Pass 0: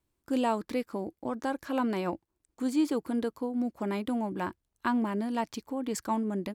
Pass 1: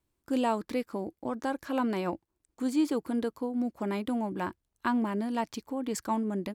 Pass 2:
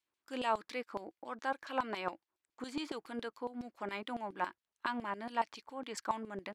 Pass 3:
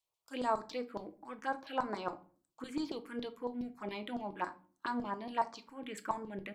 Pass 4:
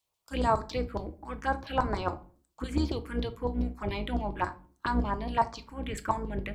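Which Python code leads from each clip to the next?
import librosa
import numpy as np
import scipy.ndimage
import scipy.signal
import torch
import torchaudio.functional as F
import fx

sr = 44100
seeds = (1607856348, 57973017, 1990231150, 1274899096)

y1 = x
y2 = fx.filter_lfo_bandpass(y1, sr, shape='saw_down', hz=7.2, low_hz=910.0, high_hz=4400.0, q=0.95)
y2 = y2 * 10.0 ** (1.5 / 20.0)
y3 = fx.env_phaser(y2, sr, low_hz=280.0, high_hz=3000.0, full_db=-33.5)
y3 = fx.room_shoebox(y3, sr, seeds[0], volume_m3=270.0, walls='furnished', distance_m=0.63)
y3 = y3 * 10.0 ** (1.5 / 20.0)
y4 = fx.octave_divider(y3, sr, octaves=2, level_db=3.0)
y4 = y4 * 10.0 ** (6.5 / 20.0)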